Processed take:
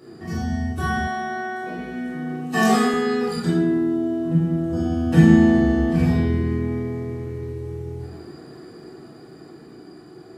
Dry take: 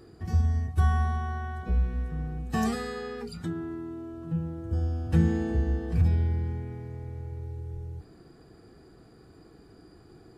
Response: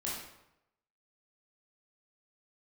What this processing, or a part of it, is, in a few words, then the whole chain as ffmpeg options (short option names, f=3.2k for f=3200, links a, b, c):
far laptop microphone: -filter_complex "[1:a]atrim=start_sample=2205[a];[0:a][a]afir=irnorm=-1:irlink=0,highpass=160,dynaudnorm=f=270:g=13:m=3dB,asettb=1/sr,asplit=3[b][c][d];[b]atrim=end=1.074[e];[c]atrim=start=1.07:end=2.94,asetpts=PTS-STARTPTS,afade=t=in:d=0.004:c=qsin,afade=t=out:st=1.866:d=0.004:c=qsin,highpass=260[f];[d]atrim=start=2.936[g];[e][f]acrossfade=d=0.004:c1=hsin:c2=qsin[h];[h][g]acrossfade=d=0.004:c1=qsin:c2=hsin,volume=7.5dB"